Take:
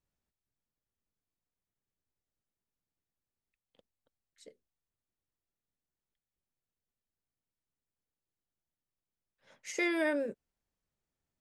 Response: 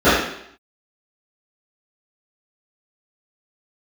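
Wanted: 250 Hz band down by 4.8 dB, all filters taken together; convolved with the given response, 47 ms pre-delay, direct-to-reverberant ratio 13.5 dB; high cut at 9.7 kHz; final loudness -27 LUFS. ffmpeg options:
-filter_complex "[0:a]lowpass=9700,equalizer=f=250:t=o:g=-7.5,asplit=2[s0][s1];[1:a]atrim=start_sample=2205,adelay=47[s2];[s1][s2]afir=irnorm=-1:irlink=0,volume=0.00794[s3];[s0][s3]amix=inputs=2:normalize=0,volume=2.37"

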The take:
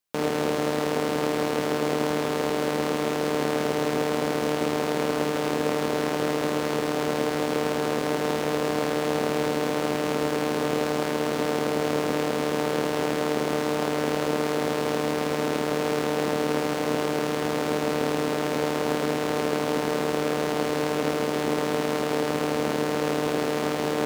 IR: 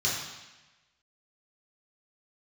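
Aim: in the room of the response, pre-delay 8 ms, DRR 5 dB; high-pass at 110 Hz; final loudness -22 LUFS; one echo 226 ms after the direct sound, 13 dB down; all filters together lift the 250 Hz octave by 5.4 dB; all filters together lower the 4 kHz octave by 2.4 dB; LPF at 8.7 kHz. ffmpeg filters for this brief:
-filter_complex "[0:a]highpass=110,lowpass=8700,equalizer=f=250:t=o:g=7,equalizer=f=4000:t=o:g=-3,aecho=1:1:226:0.224,asplit=2[s0][s1];[1:a]atrim=start_sample=2205,adelay=8[s2];[s1][s2]afir=irnorm=-1:irlink=0,volume=0.188[s3];[s0][s3]amix=inputs=2:normalize=0,volume=1.06"

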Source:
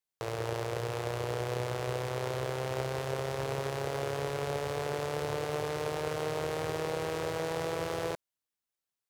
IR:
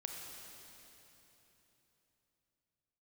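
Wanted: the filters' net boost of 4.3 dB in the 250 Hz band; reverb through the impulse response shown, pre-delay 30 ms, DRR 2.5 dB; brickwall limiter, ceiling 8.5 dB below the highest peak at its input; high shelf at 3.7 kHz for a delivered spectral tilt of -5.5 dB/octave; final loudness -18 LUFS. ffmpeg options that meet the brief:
-filter_complex "[0:a]equalizer=f=250:t=o:g=7.5,highshelf=f=3700:g=-4.5,alimiter=level_in=1.19:limit=0.0631:level=0:latency=1,volume=0.841,asplit=2[s0][s1];[1:a]atrim=start_sample=2205,adelay=30[s2];[s1][s2]afir=irnorm=-1:irlink=0,volume=0.841[s3];[s0][s3]amix=inputs=2:normalize=0,volume=7.5"

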